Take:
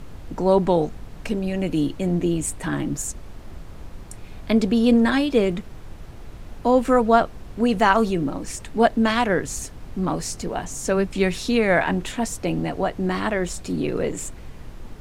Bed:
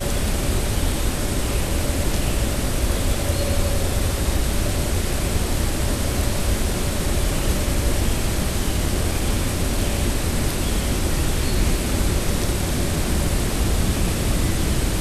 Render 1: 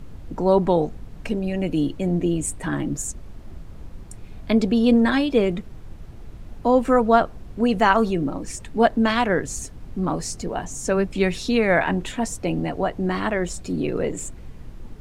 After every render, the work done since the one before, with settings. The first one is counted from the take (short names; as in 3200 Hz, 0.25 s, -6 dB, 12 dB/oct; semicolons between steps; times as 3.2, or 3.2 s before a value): denoiser 6 dB, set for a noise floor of -40 dBFS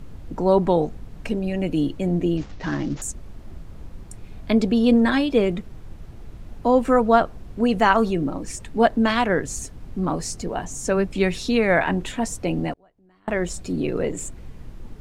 2.37–3.02 CVSD 32 kbps; 12.73–13.28 flipped gate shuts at -27 dBFS, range -34 dB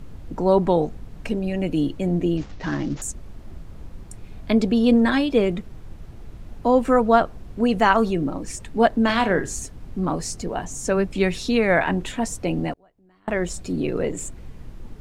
9.05–9.6 flutter echo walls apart 6.9 m, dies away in 0.23 s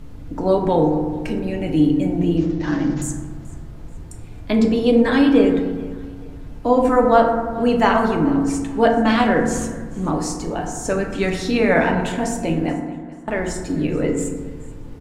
feedback echo 0.432 s, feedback 36%, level -21.5 dB; FDN reverb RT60 1.4 s, low-frequency decay 1.45×, high-frequency decay 0.35×, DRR 1 dB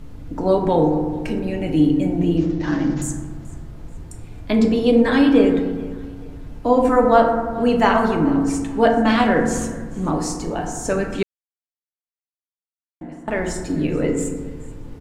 11.23–13.01 mute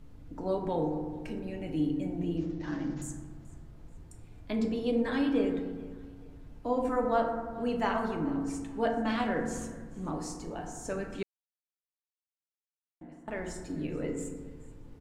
gain -14 dB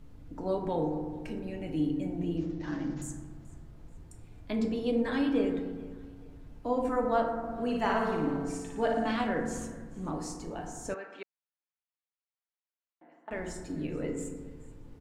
7.38–9.11 flutter echo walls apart 9.7 m, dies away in 0.75 s; 10.94–13.31 BPF 590–2900 Hz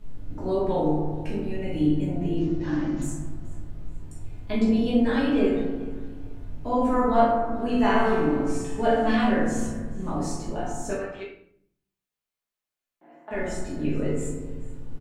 doubler 20 ms -10.5 dB; shoebox room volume 91 m³, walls mixed, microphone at 1.4 m